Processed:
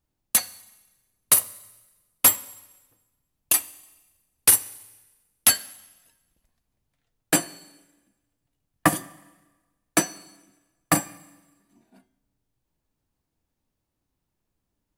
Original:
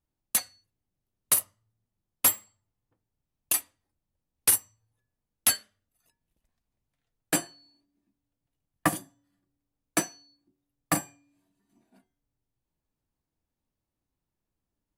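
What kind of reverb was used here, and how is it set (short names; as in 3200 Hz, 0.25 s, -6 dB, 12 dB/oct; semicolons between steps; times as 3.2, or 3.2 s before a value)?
Schroeder reverb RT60 1.2 s, combs from 31 ms, DRR 19 dB; gain +5.5 dB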